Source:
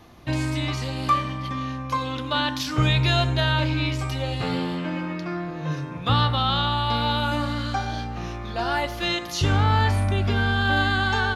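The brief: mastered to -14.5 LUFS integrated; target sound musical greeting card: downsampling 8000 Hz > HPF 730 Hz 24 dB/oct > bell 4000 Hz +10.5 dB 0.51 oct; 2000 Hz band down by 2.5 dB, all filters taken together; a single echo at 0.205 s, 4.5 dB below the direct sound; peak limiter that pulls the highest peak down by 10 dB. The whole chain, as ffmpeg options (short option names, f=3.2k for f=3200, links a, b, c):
-af "equalizer=f=2k:t=o:g=-4.5,alimiter=limit=-18.5dB:level=0:latency=1,aecho=1:1:205:0.596,aresample=8000,aresample=44100,highpass=f=730:w=0.5412,highpass=f=730:w=1.3066,equalizer=f=4k:t=o:w=0.51:g=10.5,volume=15dB"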